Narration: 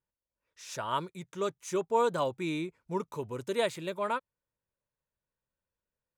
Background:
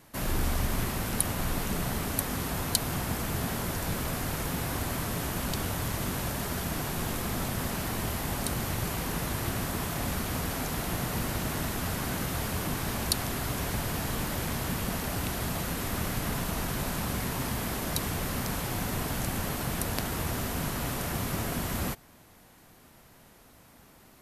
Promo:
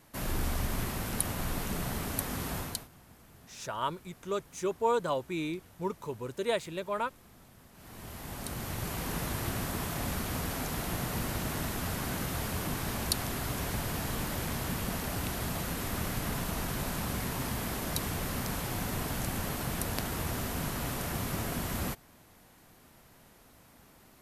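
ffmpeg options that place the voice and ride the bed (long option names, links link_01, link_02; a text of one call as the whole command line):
ffmpeg -i stem1.wav -i stem2.wav -filter_complex "[0:a]adelay=2900,volume=-1dB[link_01];[1:a]volume=19dB,afade=type=out:start_time=2.56:duration=0.32:silence=0.0841395,afade=type=in:start_time=7.73:duration=1.41:silence=0.0749894[link_02];[link_01][link_02]amix=inputs=2:normalize=0" out.wav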